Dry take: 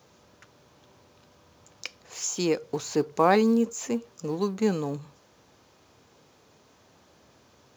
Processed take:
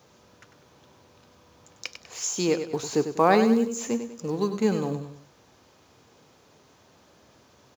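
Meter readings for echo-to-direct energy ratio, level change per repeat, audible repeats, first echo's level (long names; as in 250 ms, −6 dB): −9.0 dB, −8.0 dB, 3, −9.5 dB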